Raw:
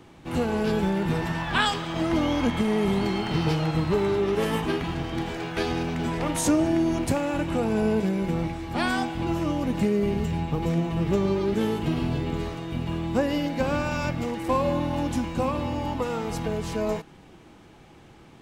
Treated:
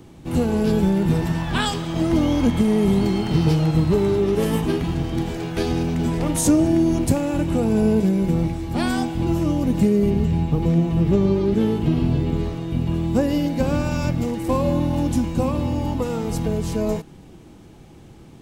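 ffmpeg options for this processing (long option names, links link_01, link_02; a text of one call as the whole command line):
ffmpeg -i in.wav -filter_complex "[0:a]asettb=1/sr,asplit=3[link_01][link_02][link_03];[link_01]atrim=end=10.104[link_04];[link_02]atrim=start=10.1:end=12.94,asetpts=PTS-STARTPTS,afade=type=in:duration=0.004:curve=qsin,afade=type=out:start_time=2.836:duration=0.004:curve=qsin,acrossover=split=4700[link_05][link_06];[link_06]acompressor=threshold=-59dB:ratio=4:attack=1:release=60[link_07];[link_05][link_07]amix=inputs=2:normalize=0[link_08];[link_03]atrim=start=12.936[link_09];[link_04][link_08]acrossfade=duration=0.004:curve1=hsin:curve2=qsin[link_10];[link_10][link_09]acrossfade=duration=0.004:curve1=qsin:curve2=hsin,equalizer=frequency=1600:width=0.34:gain=-11,volume=8.5dB" out.wav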